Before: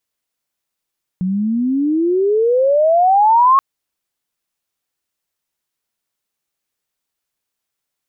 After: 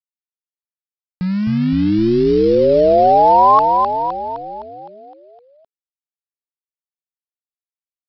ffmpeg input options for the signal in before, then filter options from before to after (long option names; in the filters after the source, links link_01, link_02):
-f lavfi -i "aevalsrc='pow(10,(-7+8.5*(t/2.38-1))/20)*sin(2*PI*179*2.38/(31.5*log(2)/12)*(exp(31.5*log(2)/12*t/2.38)-1))':duration=2.38:sample_rate=44100"
-filter_complex "[0:a]equalizer=frequency=2300:width_type=o:width=0.32:gain=-14.5,aresample=11025,aeval=exprs='val(0)*gte(abs(val(0)),0.0447)':channel_layout=same,aresample=44100,asplit=9[link_01][link_02][link_03][link_04][link_05][link_06][link_07][link_08][link_09];[link_02]adelay=257,afreqshift=-55,volume=-4dB[link_10];[link_03]adelay=514,afreqshift=-110,volume=-9dB[link_11];[link_04]adelay=771,afreqshift=-165,volume=-14.1dB[link_12];[link_05]adelay=1028,afreqshift=-220,volume=-19.1dB[link_13];[link_06]adelay=1285,afreqshift=-275,volume=-24.1dB[link_14];[link_07]adelay=1542,afreqshift=-330,volume=-29.2dB[link_15];[link_08]adelay=1799,afreqshift=-385,volume=-34.2dB[link_16];[link_09]adelay=2056,afreqshift=-440,volume=-39.3dB[link_17];[link_01][link_10][link_11][link_12][link_13][link_14][link_15][link_16][link_17]amix=inputs=9:normalize=0"